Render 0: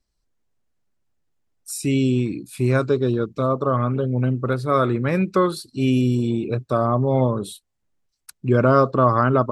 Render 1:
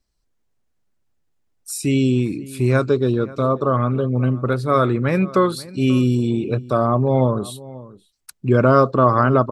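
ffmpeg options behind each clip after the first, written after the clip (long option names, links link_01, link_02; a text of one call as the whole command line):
ffmpeg -i in.wav -filter_complex "[0:a]asplit=2[link_01][link_02];[link_02]adelay=536.4,volume=-19dB,highshelf=frequency=4000:gain=-12.1[link_03];[link_01][link_03]amix=inputs=2:normalize=0,volume=2dB" out.wav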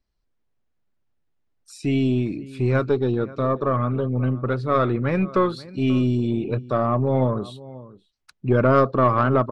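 ffmpeg -i in.wav -af "lowpass=4000,aeval=exprs='0.841*(cos(1*acos(clip(val(0)/0.841,-1,1)))-cos(1*PI/2))+0.0473*(cos(4*acos(clip(val(0)/0.841,-1,1)))-cos(4*PI/2))+0.00473*(cos(8*acos(clip(val(0)/0.841,-1,1)))-cos(8*PI/2))':channel_layout=same,volume=-3dB" out.wav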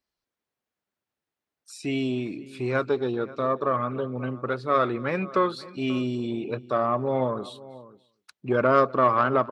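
ffmpeg -i in.wav -af "highpass=frequency=470:poles=1,aecho=1:1:250:0.0631" out.wav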